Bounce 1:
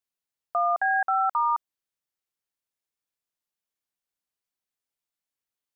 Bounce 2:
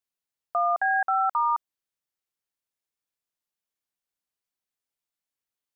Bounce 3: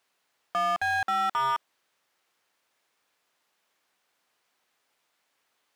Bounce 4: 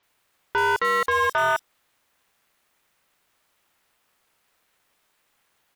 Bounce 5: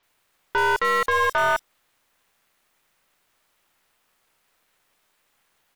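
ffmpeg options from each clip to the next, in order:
-af anull
-filter_complex "[0:a]alimiter=limit=0.0944:level=0:latency=1,asplit=2[s0][s1];[s1]highpass=f=720:p=1,volume=35.5,asoftclip=type=tanh:threshold=0.0944[s2];[s0][s2]amix=inputs=2:normalize=0,lowpass=f=1700:p=1,volume=0.501"
-filter_complex "[0:a]aeval=exprs='val(0)*sin(2*PI*290*n/s)':c=same,highshelf=f=9600:g=5.5,acrossover=split=5200[s0][s1];[s1]adelay=30[s2];[s0][s2]amix=inputs=2:normalize=0,volume=2.51"
-af "aeval=exprs='if(lt(val(0),0),0.708*val(0),val(0))':c=same,volume=1.26"

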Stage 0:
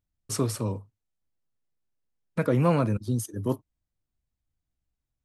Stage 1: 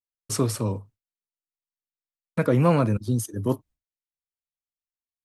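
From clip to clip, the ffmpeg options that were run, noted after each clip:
-af "agate=range=0.0224:threshold=0.00398:ratio=3:detection=peak,volume=1.41"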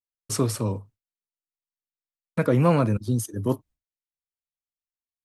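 -af anull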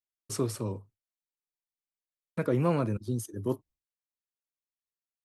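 -af "equalizer=f=370:t=o:w=0.4:g=5.5,volume=0.398"

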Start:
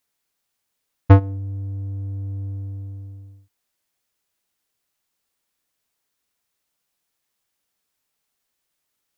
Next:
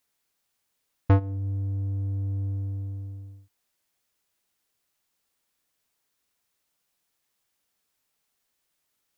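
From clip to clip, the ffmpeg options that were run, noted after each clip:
-af "alimiter=limit=0.211:level=0:latency=1:release=361"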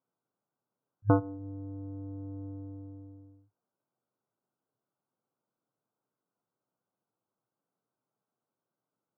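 -af "adynamicsmooth=sensitivity=2.5:basefreq=1100,afftfilt=real='re*between(b*sr/4096,100,1600)':imag='im*between(b*sr/4096,100,1600)':win_size=4096:overlap=0.75,volume=1.19"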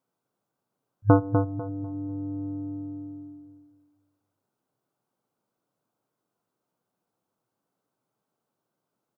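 -filter_complex "[0:a]asplit=2[s0][s1];[s1]adelay=248,lowpass=f=1300:p=1,volume=0.562,asplit=2[s2][s3];[s3]adelay=248,lowpass=f=1300:p=1,volume=0.33,asplit=2[s4][s5];[s5]adelay=248,lowpass=f=1300:p=1,volume=0.33,asplit=2[s6][s7];[s7]adelay=248,lowpass=f=1300:p=1,volume=0.33[s8];[s0][s2][s4][s6][s8]amix=inputs=5:normalize=0,volume=2"

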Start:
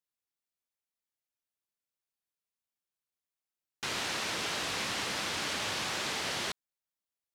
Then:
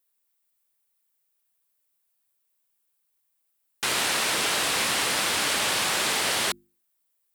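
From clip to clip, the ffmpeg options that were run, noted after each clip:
-af "lowshelf=f=180:g=-6.5,aexciter=amount=2.9:drive=4.4:freq=8200,bandreject=f=50:t=h:w=6,bandreject=f=100:t=h:w=6,bandreject=f=150:t=h:w=6,bandreject=f=200:t=h:w=6,bandreject=f=250:t=h:w=6,bandreject=f=300:t=h:w=6,bandreject=f=350:t=h:w=6,volume=2.82"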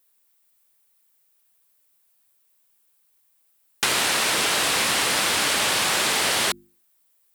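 -af "acompressor=threshold=0.0398:ratio=5,volume=2.82"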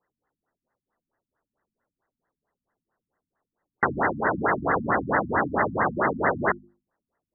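-af "afftfilt=real='re*lt(b*sr/1024,260*pow(2100/260,0.5+0.5*sin(2*PI*4.5*pts/sr)))':imag='im*lt(b*sr/1024,260*pow(2100/260,0.5+0.5*sin(2*PI*4.5*pts/sr)))':win_size=1024:overlap=0.75,volume=2.11"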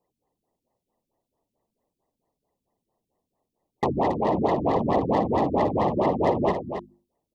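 -filter_complex "[0:a]asplit=2[s0][s1];[s1]asoftclip=type=tanh:threshold=0.106,volume=0.668[s2];[s0][s2]amix=inputs=2:normalize=0,asuperstop=centerf=1500:order=4:qfactor=1,aecho=1:1:275:0.376"

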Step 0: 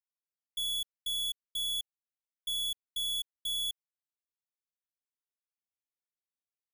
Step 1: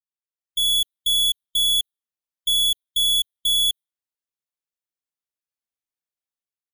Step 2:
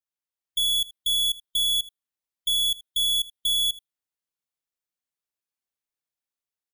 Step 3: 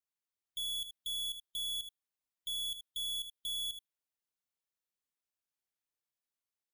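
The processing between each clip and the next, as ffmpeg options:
-af "dynaudnorm=f=130:g=7:m=3.35,afftdn=nr=14:nf=-49,volume=1.5"
-af "aecho=1:1:80:0.075,alimiter=limit=0.0841:level=0:latency=1:release=82"
-af "asoftclip=type=hard:threshold=0.0224,volume=0.631"

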